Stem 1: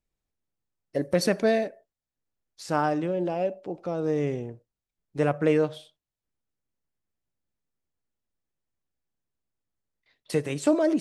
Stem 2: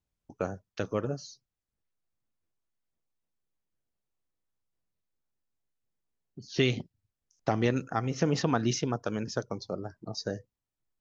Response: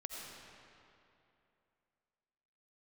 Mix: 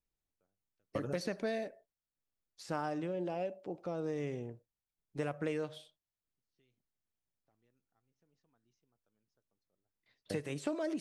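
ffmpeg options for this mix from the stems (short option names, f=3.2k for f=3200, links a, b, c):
-filter_complex "[0:a]volume=-7dB,asplit=2[a][b];[1:a]volume=-4.5dB[c];[b]apad=whole_len=485538[d];[c][d]sidechaingate=range=-46dB:threshold=-51dB:ratio=16:detection=peak[e];[a][e]amix=inputs=2:normalize=0,acrossover=split=1400|4100[f][g][h];[f]acompressor=threshold=-34dB:ratio=4[i];[g]acompressor=threshold=-46dB:ratio=4[j];[h]acompressor=threshold=-53dB:ratio=4[k];[i][j][k]amix=inputs=3:normalize=0"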